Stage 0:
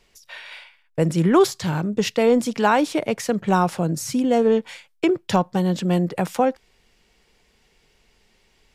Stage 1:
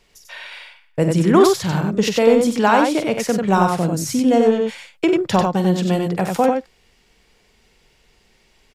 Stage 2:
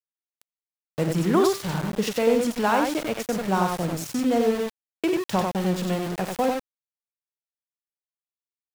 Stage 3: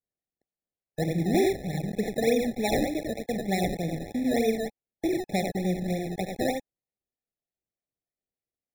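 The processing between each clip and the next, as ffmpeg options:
-af "aecho=1:1:46.65|93.29:0.282|0.631,volume=2dB"
-af "bandreject=f=393.6:t=h:w=4,bandreject=f=787.2:t=h:w=4,bandreject=f=1.1808k:t=h:w=4,bandreject=f=1.5744k:t=h:w=4,bandreject=f=1.968k:t=h:w=4,bandreject=f=2.3616k:t=h:w=4,bandreject=f=2.7552k:t=h:w=4,bandreject=f=3.1488k:t=h:w=4,bandreject=f=3.5424k:t=h:w=4,bandreject=f=3.936k:t=h:w=4,aeval=exprs='val(0)*gte(abs(val(0)),0.075)':c=same,volume=-7dB"
-filter_complex "[0:a]acrossover=split=310[a][b];[b]acrusher=samples=27:mix=1:aa=0.000001:lfo=1:lforange=27:lforate=3.3[c];[a][c]amix=inputs=2:normalize=0,afftfilt=real='re*eq(mod(floor(b*sr/1024/850),2),0)':imag='im*eq(mod(floor(b*sr/1024/850),2),0)':win_size=1024:overlap=0.75,volume=-3dB"

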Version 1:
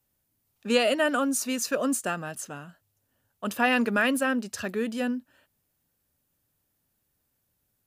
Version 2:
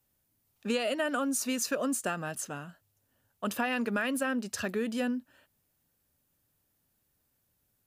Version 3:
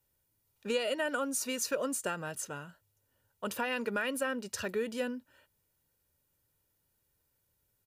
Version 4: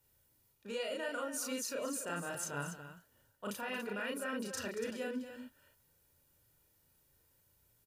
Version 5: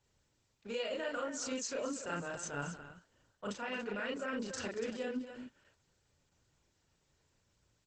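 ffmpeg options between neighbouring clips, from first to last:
-af "acompressor=threshold=-27dB:ratio=6"
-af "aecho=1:1:2.1:0.43,volume=-2.5dB"
-af "areverse,acompressor=threshold=-42dB:ratio=6,areverse,aecho=1:1:34.99|230.3|285.7:0.891|0.251|0.355,volume=2.5dB"
-af "volume=1.5dB" -ar 48000 -c:a libopus -b:a 12k

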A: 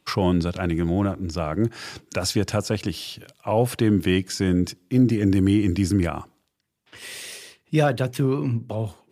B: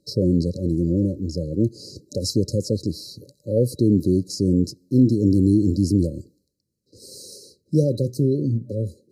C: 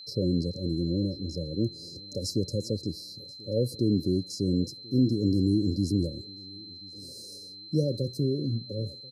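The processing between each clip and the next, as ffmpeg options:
-af "afftfilt=real='re*(1-between(b*sr/4096,590,3900))':imag='im*(1-between(b*sr/4096,590,3900))':win_size=4096:overlap=0.75,highshelf=f=6.6k:g=-7,volume=2dB"
-af "aeval=exprs='val(0)+0.0178*sin(2*PI*4100*n/s)':c=same,aecho=1:1:1036|2072:0.0631|0.0208,volume=-7.5dB"

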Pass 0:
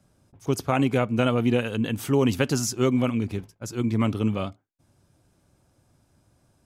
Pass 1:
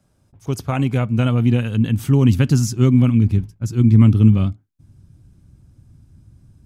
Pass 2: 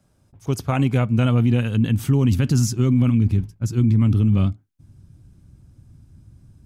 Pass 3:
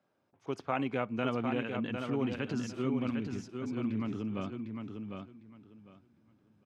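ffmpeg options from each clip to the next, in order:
-af "asubboost=boost=10.5:cutoff=190"
-af "alimiter=limit=-10dB:level=0:latency=1:release=19"
-filter_complex "[0:a]highpass=350,lowpass=2.8k,asplit=2[a][b];[b]aecho=0:1:753|1506|2259:0.531|0.106|0.0212[c];[a][c]amix=inputs=2:normalize=0,volume=-6.5dB"

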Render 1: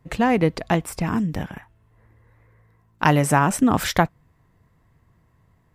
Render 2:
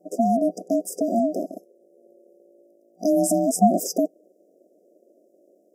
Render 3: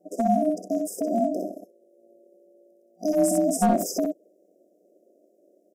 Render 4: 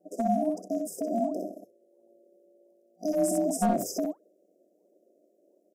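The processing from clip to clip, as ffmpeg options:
-af "afftfilt=real='re*(1-between(b*sr/4096,280,5300))':imag='im*(1-between(b*sr/4096,280,5300))':win_size=4096:overlap=0.75,aeval=exprs='val(0)*sin(2*PI*460*n/s)':c=same,volume=4.5dB"
-af "aeval=exprs='clip(val(0),-1,0.211)':c=same,aecho=1:1:53|63:0.316|0.596,volume=-4dB"
-af "flanger=delay=0.2:depth=4.7:regen=-90:speed=1.4:shape=sinusoidal"

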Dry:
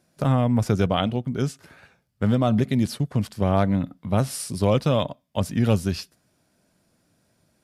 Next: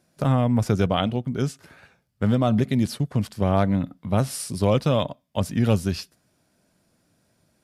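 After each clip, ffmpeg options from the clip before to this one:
-af anull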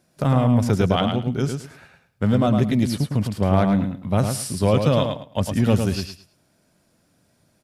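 -filter_complex "[0:a]asplit=2[a][b];[b]asoftclip=type=tanh:threshold=-17dB,volume=-12dB[c];[a][c]amix=inputs=2:normalize=0,aecho=1:1:107|214|321:0.501|0.1|0.02"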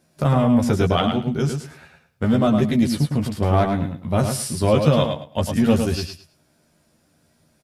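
-filter_complex "[0:a]asplit=2[a][b];[b]adelay=13,volume=-4dB[c];[a][c]amix=inputs=2:normalize=0"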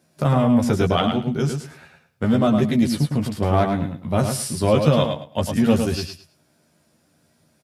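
-af "highpass=81"

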